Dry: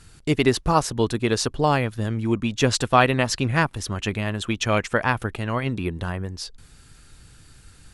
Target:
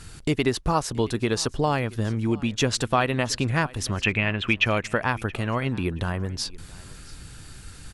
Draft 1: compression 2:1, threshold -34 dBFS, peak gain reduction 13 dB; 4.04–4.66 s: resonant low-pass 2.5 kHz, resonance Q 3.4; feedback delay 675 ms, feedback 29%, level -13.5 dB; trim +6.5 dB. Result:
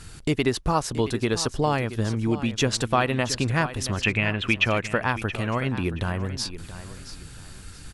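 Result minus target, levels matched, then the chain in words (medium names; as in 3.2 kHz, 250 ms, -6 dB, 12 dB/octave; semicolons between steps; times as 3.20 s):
echo-to-direct +8.5 dB
compression 2:1, threshold -34 dBFS, peak gain reduction 13 dB; 4.04–4.66 s: resonant low-pass 2.5 kHz, resonance Q 3.4; feedback delay 675 ms, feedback 29%, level -22 dB; trim +6.5 dB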